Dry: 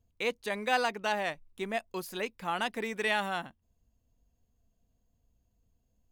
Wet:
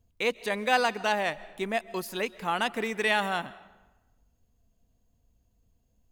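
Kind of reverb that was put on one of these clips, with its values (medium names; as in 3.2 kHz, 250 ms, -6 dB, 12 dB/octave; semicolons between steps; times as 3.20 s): algorithmic reverb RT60 1.1 s, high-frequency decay 0.75×, pre-delay 100 ms, DRR 18.5 dB; trim +4 dB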